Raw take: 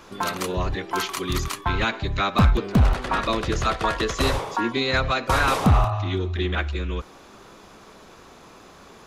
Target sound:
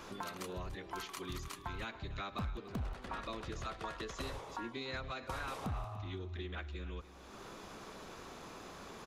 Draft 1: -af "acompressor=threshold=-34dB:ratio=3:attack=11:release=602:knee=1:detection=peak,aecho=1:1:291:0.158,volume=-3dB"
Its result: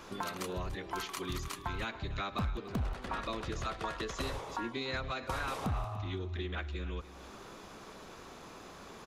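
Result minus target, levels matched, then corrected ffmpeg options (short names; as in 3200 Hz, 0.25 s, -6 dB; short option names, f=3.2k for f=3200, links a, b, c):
compressor: peak gain reduction -5 dB
-af "acompressor=threshold=-41.5dB:ratio=3:attack=11:release=602:knee=1:detection=peak,aecho=1:1:291:0.158,volume=-3dB"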